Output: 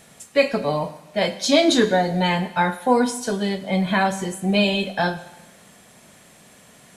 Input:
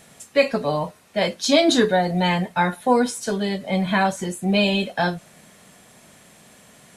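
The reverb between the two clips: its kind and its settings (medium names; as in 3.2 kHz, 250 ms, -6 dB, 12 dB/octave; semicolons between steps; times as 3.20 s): Schroeder reverb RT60 1.1 s, combs from 32 ms, DRR 13 dB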